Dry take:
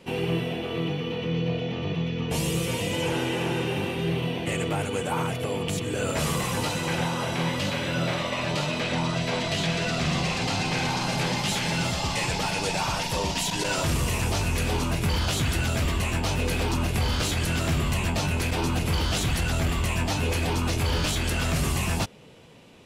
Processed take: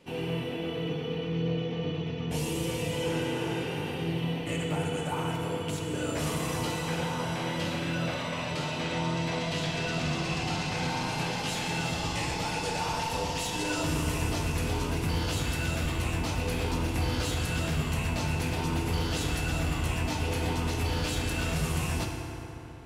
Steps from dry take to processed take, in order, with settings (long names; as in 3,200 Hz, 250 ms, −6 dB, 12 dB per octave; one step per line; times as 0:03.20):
feedback delay network reverb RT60 3.7 s, high-frequency decay 0.5×, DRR 0.5 dB
level −7.5 dB